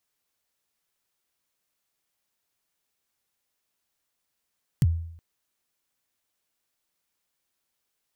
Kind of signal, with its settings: kick drum length 0.37 s, from 170 Hz, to 83 Hz, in 37 ms, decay 0.68 s, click on, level -14 dB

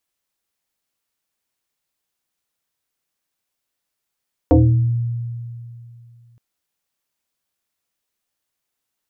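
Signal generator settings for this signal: FM tone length 1.87 s, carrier 118 Hz, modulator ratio 1.68, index 2.8, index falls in 0.62 s exponential, decay 2.67 s, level -7 dB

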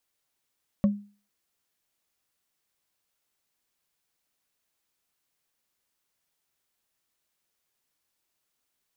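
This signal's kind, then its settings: wood hit, lowest mode 204 Hz, decay 0.37 s, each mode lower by 10 dB, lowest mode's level -15 dB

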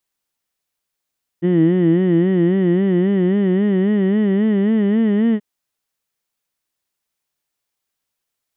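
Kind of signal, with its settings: formant vowel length 3.98 s, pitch 169 Hz, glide +4.5 st, vibrato 3.7 Hz, vibrato depth 1.15 st, F1 310 Hz, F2 1.9 kHz, F3 3 kHz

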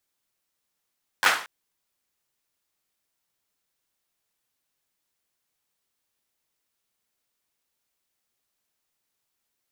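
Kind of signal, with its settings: hand clap length 0.23 s, bursts 4, apart 10 ms, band 1.3 kHz, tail 0.43 s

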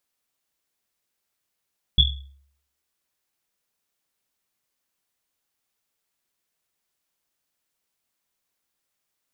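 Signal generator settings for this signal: Risset drum, pitch 69 Hz, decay 0.64 s, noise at 3.4 kHz, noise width 190 Hz, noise 50%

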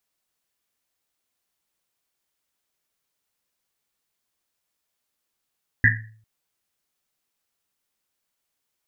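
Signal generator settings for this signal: Risset drum length 0.40 s, pitch 110 Hz, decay 0.58 s, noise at 1.8 kHz, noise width 300 Hz, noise 60%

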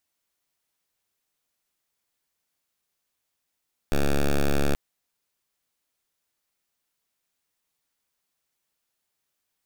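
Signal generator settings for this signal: pulse 71.1 Hz, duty 7% -20.5 dBFS 0.83 s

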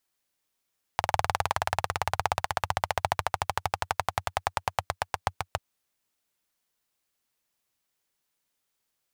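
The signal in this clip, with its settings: single-cylinder engine model, changing speed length 4.59 s, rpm 2400, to 800, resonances 92/810 Hz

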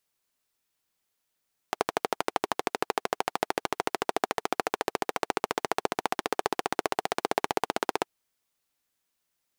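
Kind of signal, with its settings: single-cylinder engine model, changing speed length 6.34 s, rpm 1500, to 1900, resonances 430/730 Hz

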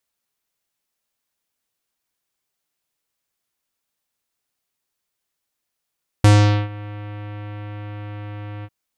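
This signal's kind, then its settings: synth note square G#2 24 dB/octave, low-pass 2.8 kHz, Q 1, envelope 2 oct, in 0.42 s, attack 3.3 ms, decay 0.44 s, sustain -23 dB, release 0.05 s, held 2.40 s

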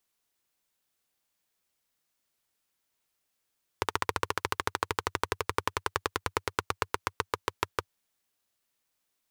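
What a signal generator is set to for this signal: single-cylinder engine model, changing speed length 4.12 s, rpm 1800, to 700, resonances 95/430/1000 Hz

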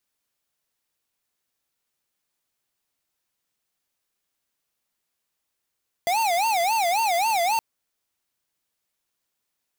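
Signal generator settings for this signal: siren wail 677–913 Hz 3.7 per s square -22 dBFS 1.52 s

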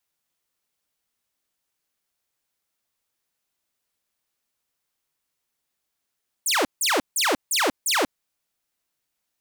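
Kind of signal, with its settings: burst of laser zaps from 10 kHz, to 240 Hz, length 0.19 s saw, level -16 dB, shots 5, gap 0.16 s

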